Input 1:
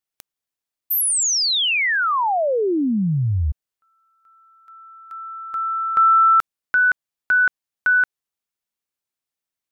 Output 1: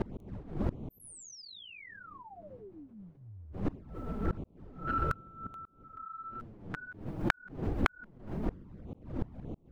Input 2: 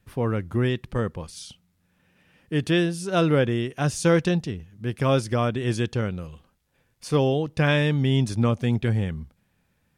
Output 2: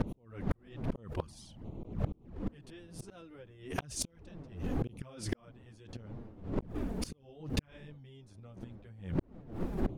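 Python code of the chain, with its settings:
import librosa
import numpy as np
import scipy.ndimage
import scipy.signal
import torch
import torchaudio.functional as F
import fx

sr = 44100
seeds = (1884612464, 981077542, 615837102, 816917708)

y = fx.dmg_wind(x, sr, seeds[0], corner_hz=250.0, level_db=-26.0)
y = fx.gate_flip(y, sr, shuts_db=-19.0, range_db=-42)
y = fx.env_flanger(y, sr, rest_ms=11.8, full_db=-31.0)
y = fx.gate_flip(y, sr, shuts_db=-33.0, range_db=-26)
y = fx.pre_swell(y, sr, db_per_s=120.0)
y = y * 10.0 ** (14.0 / 20.0)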